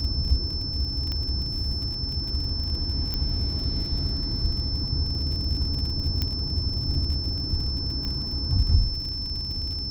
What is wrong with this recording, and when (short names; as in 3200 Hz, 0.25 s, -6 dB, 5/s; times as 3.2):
crackle 55/s -33 dBFS
tone 5300 Hz -30 dBFS
1.12 pop -18 dBFS
3.14 pop -14 dBFS
6.22 pop -12 dBFS
8.05 pop -19 dBFS